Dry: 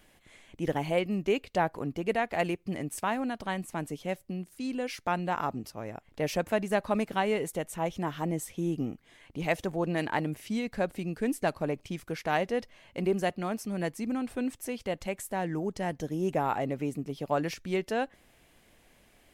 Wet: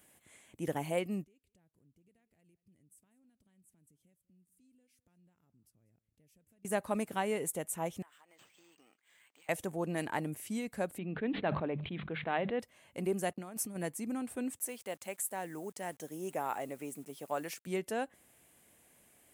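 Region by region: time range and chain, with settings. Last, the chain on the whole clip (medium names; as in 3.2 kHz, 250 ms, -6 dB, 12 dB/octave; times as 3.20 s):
1.24–6.65 s: compression 2.5:1, threshold -46 dBFS + amplifier tone stack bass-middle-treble 10-0-1 + delay 193 ms -21 dB
8.02–9.49 s: high-pass 1.4 kHz + compression, threshold -53 dBFS + decimation joined by straight lines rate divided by 4×
10.98–12.60 s: steep low-pass 3.9 kHz 96 dB/octave + hum notches 50/100/150/200 Hz + decay stretcher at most 41 dB/s
13.33–13.76 s: gate -52 dBFS, range -24 dB + compressor with a negative ratio -36 dBFS, ratio -0.5
14.59–17.67 s: high-pass 470 Hz 6 dB/octave + word length cut 10-bit, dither none
whole clip: high-pass 84 Hz; resonant high shelf 6.5 kHz +9 dB, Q 1.5; trim -5.5 dB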